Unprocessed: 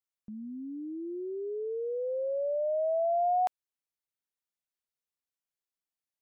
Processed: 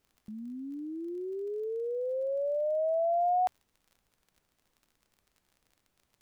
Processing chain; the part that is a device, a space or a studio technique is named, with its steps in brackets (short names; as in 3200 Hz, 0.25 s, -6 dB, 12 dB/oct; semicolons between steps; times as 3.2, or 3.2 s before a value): vinyl LP (crackle 36/s -49 dBFS; pink noise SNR 43 dB)